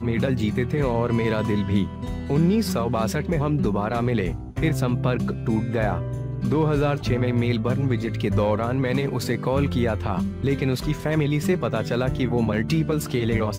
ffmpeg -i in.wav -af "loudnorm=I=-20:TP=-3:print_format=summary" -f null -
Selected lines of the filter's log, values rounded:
Input Integrated:    -23.6 LUFS
Input True Peak:      -9.0 dBTP
Input LRA:             0.7 LU
Input Threshold:     -33.6 LUFS